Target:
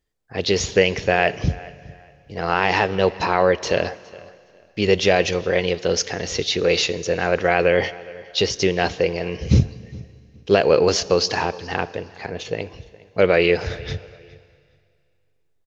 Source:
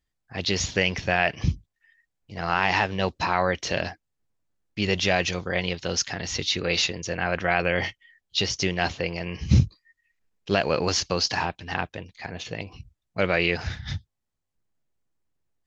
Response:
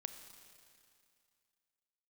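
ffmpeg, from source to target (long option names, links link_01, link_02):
-filter_complex "[0:a]equalizer=frequency=450:width=1.9:gain=10.5,asplit=2[link_01][link_02];[link_02]adelay=413,lowpass=frequency=4500:poles=1,volume=-21dB,asplit=2[link_03][link_04];[link_04]adelay=413,lowpass=frequency=4500:poles=1,volume=0.25[link_05];[link_01][link_03][link_05]amix=inputs=3:normalize=0,asplit=2[link_06][link_07];[1:a]atrim=start_sample=2205[link_08];[link_07][link_08]afir=irnorm=-1:irlink=0,volume=-3.5dB[link_09];[link_06][link_09]amix=inputs=2:normalize=0,volume=-1dB"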